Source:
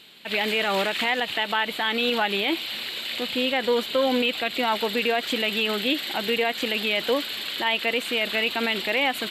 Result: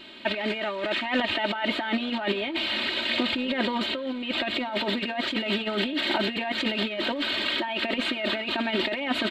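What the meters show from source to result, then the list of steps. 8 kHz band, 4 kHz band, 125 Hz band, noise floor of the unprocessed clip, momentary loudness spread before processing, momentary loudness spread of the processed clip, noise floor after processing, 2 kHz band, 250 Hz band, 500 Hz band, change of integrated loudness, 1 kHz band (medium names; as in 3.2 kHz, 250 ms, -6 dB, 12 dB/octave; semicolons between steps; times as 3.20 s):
-10.5 dB, -2.5 dB, no reading, -35 dBFS, 3 LU, 3 LU, -33 dBFS, -3.0 dB, +1.0 dB, -4.5 dB, -3.0 dB, -4.0 dB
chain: comb 3.2 ms, depth 100%; peak limiter -13.5 dBFS, peak gain reduction 6.5 dB; compressor with a negative ratio -27 dBFS, ratio -0.5; tape spacing loss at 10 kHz 25 dB; echo from a far wall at 200 m, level -19 dB; trim +5 dB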